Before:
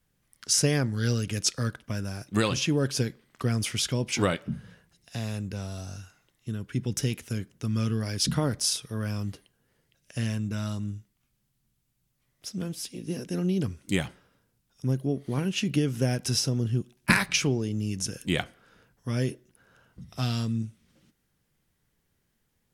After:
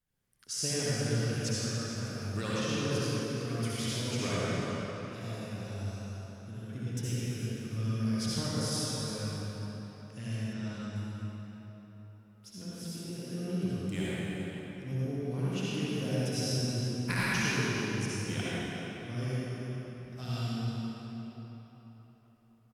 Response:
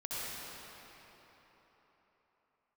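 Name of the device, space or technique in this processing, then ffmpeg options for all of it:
cave: -filter_complex "[0:a]aecho=1:1:352:0.224[a];[1:a]atrim=start_sample=2205[b];[a][b]afir=irnorm=-1:irlink=0,asettb=1/sr,asplit=3[c][d][e];[c]atrim=end=10.534[f];[d]atrim=start=10.53:end=10.96,asetpts=PTS-STARTPTS,afade=t=in:d=0.004:c=qsin,afade=t=out:st=0.426:d=0.004:c=qsin,lowpass=6.9k[g];[e]atrim=start=10.956[h];[f][g]acrossfade=d=0.004:c1=hsin:c2=qsin[i];[i][h]acrossfade=d=0.004:c1=qsin:c2=hsin,volume=-8.5dB"

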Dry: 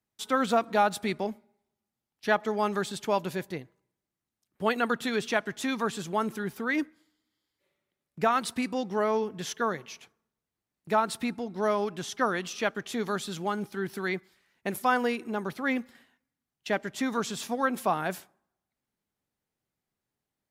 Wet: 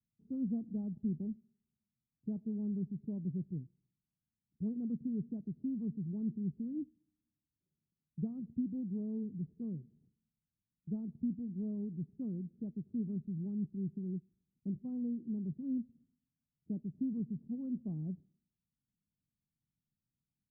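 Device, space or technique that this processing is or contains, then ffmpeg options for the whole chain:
the neighbour's flat through the wall: -af "lowpass=f=240:w=0.5412,lowpass=f=240:w=1.3066,equalizer=f=150:t=o:w=0.44:g=4,volume=-1dB"

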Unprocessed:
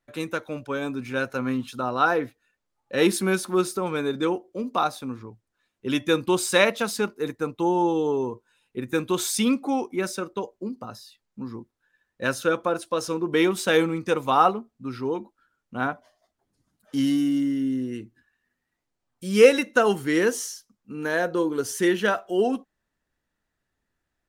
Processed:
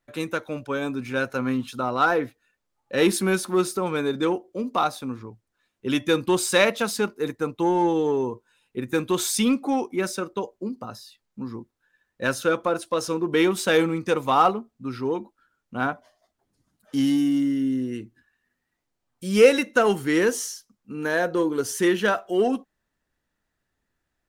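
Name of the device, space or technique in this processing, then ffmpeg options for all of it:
parallel distortion: -filter_complex "[0:a]asplit=2[a][b];[b]asoftclip=type=hard:threshold=-19.5dB,volume=-8dB[c];[a][c]amix=inputs=2:normalize=0,volume=-1.5dB"

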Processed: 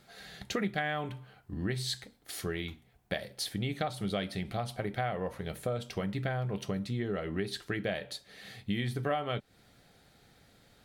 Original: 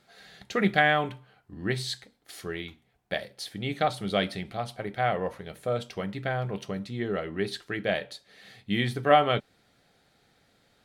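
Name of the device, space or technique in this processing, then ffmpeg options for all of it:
ASMR close-microphone chain: -af "lowshelf=f=160:g=7.5,acompressor=threshold=-32dB:ratio=5,highshelf=f=10k:g=7.5,volume=1.5dB"

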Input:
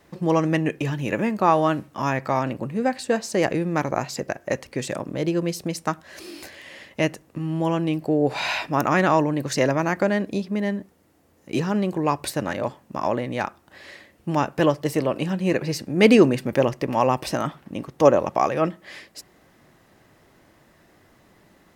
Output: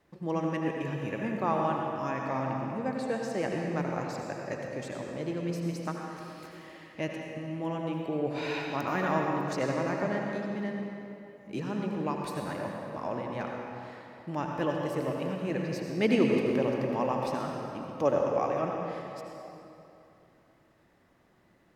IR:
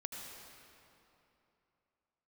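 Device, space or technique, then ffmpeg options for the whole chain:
swimming-pool hall: -filter_complex "[1:a]atrim=start_sample=2205[a];[0:a][a]afir=irnorm=-1:irlink=0,highshelf=f=4.8k:g=-6.5,volume=-7.5dB"

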